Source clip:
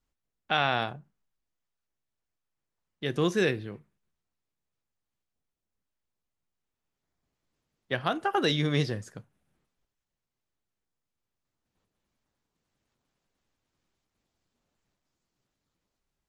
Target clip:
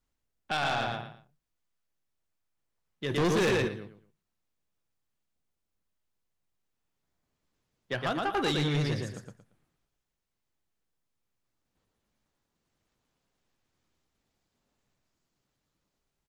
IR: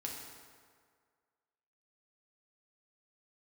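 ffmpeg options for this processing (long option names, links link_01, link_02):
-filter_complex "[0:a]aecho=1:1:115|230|345:0.631|0.158|0.0394,asplit=3[link_01][link_02][link_03];[link_01]afade=type=out:start_time=3.1:duration=0.02[link_04];[link_02]acontrast=77,afade=type=in:start_time=3.1:duration=0.02,afade=type=out:start_time=3.67:duration=0.02[link_05];[link_03]afade=type=in:start_time=3.67:duration=0.02[link_06];[link_04][link_05][link_06]amix=inputs=3:normalize=0,asoftclip=type=tanh:threshold=-23dB"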